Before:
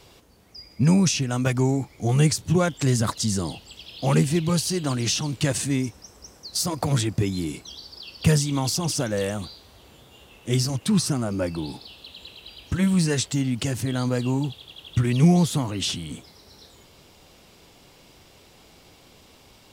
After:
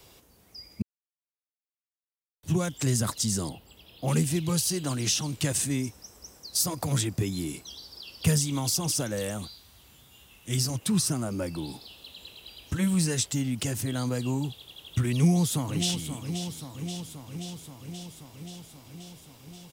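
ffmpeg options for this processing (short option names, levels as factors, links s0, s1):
-filter_complex "[0:a]asettb=1/sr,asplit=3[s0][s1][s2];[s0]atrim=end=3.494[s3];[s1]atrim=start=3.49:end=4.08,asetpts=PTS-STARTPTS,afade=t=in:d=0.004:c=qsin,afade=t=out:st=0.586:d=0.004:c=qsin,equalizer=f=5700:t=o:w=2:g=-13.5[s4];[s2]atrim=start=4.076[s5];[s3][s4]acrossfade=d=0.004:c1=hsin:c2=qsin[s6];[s6][s5]acrossfade=d=0.004:c1=qsin:c2=hsin,asettb=1/sr,asplit=3[s7][s8][s9];[s7]atrim=end=9.474[s10];[s8]atrim=start=9.47:end=10.58,asetpts=PTS-STARTPTS,afade=t=in:d=0.004:c=qsin,afade=t=out:st=1.106:d=0.004:c=qsin,equalizer=f=490:w=0.82:g=-9[s11];[s9]atrim=start=10.576[s12];[s10][s11]acrossfade=d=0.004:c1=hsin:c2=qsin[s13];[s13][s12]acrossfade=d=0.004:c1=qsin:c2=hsin,asplit=2[s14][s15];[s15]afade=t=in:st=15.15:d=0.01,afade=t=out:st=16.07:d=0.01,aecho=0:1:530|1060|1590|2120|2650|3180|3710|4240|4770|5300|5830|6360:0.316228|0.237171|0.177878|0.133409|0.100056|0.0750423|0.0562817|0.0422113|0.0316585|0.0237439|0.0178079|0.0133559[s16];[s14][s16]amix=inputs=2:normalize=0,asplit=3[s17][s18][s19];[s17]atrim=end=0.82,asetpts=PTS-STARTPTS,afade=t=out:st=0.816:d=0.004:c=hsin[s20];[s18]atrim=start=0.82:end=2.43,asetpts=PTS-STARTPTS,volume=0[s21];[s19]atrim=start=2.43,asetpts=PTS-STARTPTS,afade=t=in:d=0.004:c=hsin[s22];[s20][s21][s22]concat=n=3:v=0:a=1,highshelf=f=8700:g=12,bandreject=f=4400:w=26,acrossover=split=250|3000[s23][s24][s25];[s24]acompressor=threshold=0.0562:ratio=6[s26];[s23][s26][s25]amix=inputs=3:normalize=0,volume=0.596"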